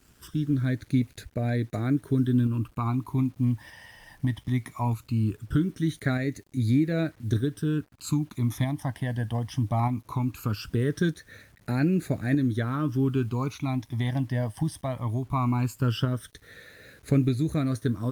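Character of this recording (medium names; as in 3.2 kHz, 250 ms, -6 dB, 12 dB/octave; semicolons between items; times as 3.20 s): phasing stages 12, 0.19 Hz, lowest notch 420–1000 Hz; a quantiser's noise floor 10-bit, dither none; tremolo saw up 0.81 Hz, depth 35%; Opus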